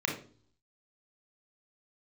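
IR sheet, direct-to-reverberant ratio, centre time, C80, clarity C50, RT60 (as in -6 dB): 0.0 dB, 25 ms, 12.5 dB, 6.5 dB, 0.45 s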